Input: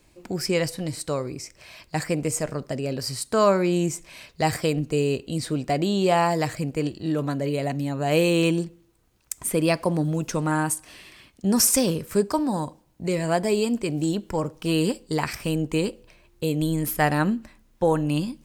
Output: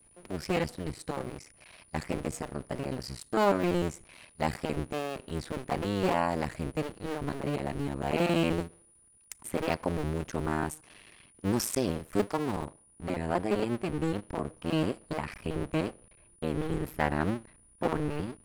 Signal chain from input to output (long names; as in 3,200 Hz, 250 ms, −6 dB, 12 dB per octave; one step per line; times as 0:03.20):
sub-harmonics by changed cycles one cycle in 2, muted
bass and treble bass +1 dB, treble −8 dB, from 0:12.65 treble −14 dB
steady tone 9,700 Hz −55 dBFS
level −4.5 dB